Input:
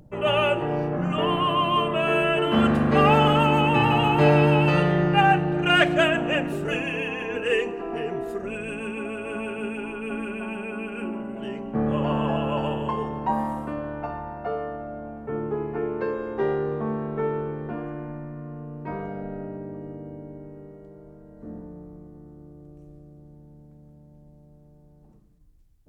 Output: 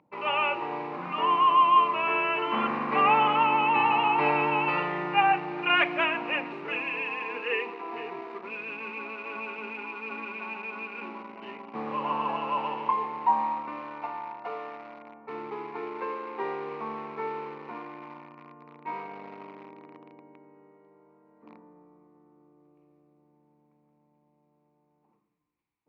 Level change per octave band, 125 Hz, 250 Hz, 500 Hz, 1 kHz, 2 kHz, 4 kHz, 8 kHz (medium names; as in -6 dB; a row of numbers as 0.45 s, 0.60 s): -20.5 dB, -12.0 dB, -10.0 dB, +0.5 dB, -2.5 dB, -5.5 dB, no reading